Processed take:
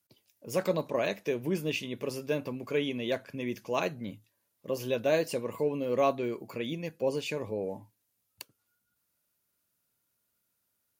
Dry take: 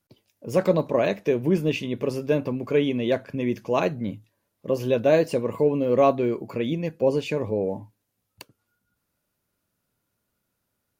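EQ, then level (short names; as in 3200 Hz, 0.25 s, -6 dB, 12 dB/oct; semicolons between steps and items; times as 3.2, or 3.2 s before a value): tilt +2.5 dB/oct; low shelf 210 Hz +5 dB; -6.5 dB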